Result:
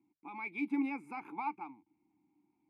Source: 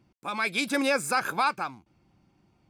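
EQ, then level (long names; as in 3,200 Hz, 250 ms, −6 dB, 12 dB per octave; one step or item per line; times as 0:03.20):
formant filter u
flat-topped bell 4,900 Hz −9 dB
mains-hum notches 50/100/150 Hz
0.0 dB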